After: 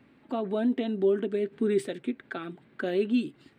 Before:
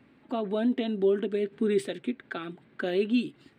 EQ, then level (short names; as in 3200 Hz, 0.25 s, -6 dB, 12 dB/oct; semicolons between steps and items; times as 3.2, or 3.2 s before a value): dynamic EQ 3300 Hz, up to -4 dB, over -49 dBFS, Q 1.2; 0.0 dB